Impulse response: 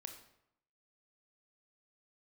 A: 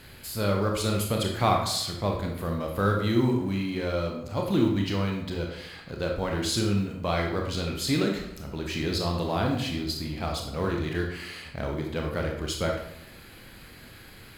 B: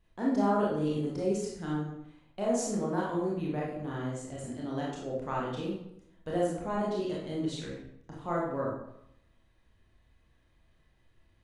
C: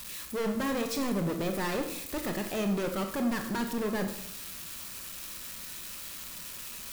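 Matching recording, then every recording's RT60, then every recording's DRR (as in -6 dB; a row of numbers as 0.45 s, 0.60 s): C; 0.80 s, 0.80 s, 0.80 s; 1.0 dB, -5.0 dB, 5.0 dB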